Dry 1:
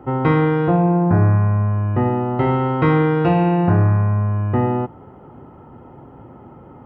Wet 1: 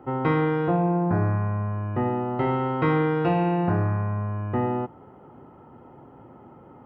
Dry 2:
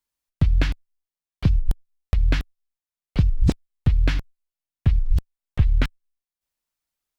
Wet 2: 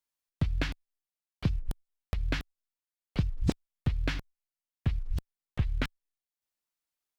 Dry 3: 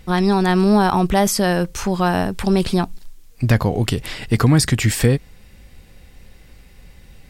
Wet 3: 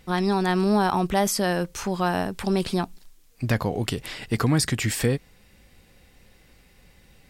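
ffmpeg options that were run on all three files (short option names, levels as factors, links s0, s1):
-af "lowshelf=f=110:g=-9,volume=0.562"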